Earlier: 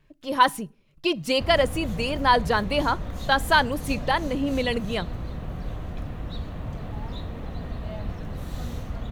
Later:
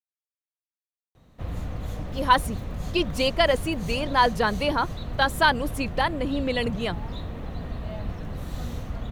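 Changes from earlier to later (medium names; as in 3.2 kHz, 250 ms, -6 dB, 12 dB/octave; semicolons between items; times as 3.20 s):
speech: entry +1.90 s; reverb: off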